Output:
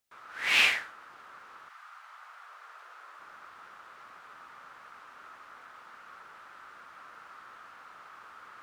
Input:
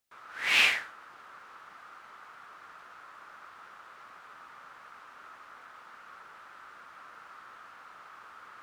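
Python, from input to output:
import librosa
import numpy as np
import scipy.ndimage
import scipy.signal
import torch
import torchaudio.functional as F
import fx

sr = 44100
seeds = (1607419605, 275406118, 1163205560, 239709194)

y = fx.highpass(x, sr, hz=fx.line((1.68, 900.0), (3.18, 330.0)), slope=24, at=(1.68, 3.18), fade=0.02)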